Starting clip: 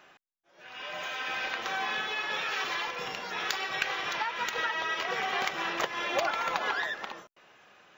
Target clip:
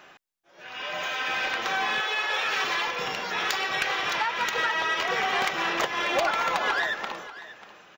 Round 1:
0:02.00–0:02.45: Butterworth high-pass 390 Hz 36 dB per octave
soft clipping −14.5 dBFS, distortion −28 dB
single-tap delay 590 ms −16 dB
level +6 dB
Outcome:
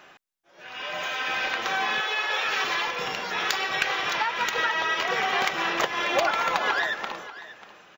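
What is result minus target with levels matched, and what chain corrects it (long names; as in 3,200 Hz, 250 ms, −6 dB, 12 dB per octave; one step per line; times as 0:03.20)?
soft clipping: distortion −10 dB
0:02.00–0:02.45: Butterworth high-pass 390 Hz 36 dB per octave
soft clipping −22 dBFS, distortion −18 dB
single-tap delay 590 ms −16 dB
level +6 dB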